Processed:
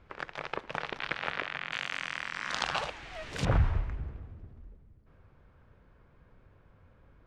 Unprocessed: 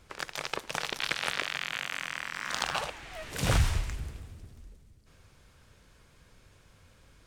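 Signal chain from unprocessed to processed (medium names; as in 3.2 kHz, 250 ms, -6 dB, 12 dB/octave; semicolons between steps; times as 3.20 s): low-pass 2.2 kHz 12 dB/octave, from 1.72 s 5.4 kHz, from 3.45 s 1.4 kHz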